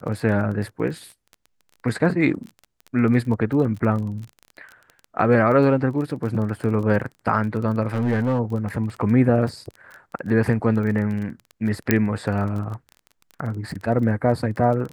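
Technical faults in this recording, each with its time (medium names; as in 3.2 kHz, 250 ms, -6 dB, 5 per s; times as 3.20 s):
crackle 22 per s -30 dBFS
7.87–8.40 s: clipped -16.5 dBFS
11.91 s: pop -2 dBFS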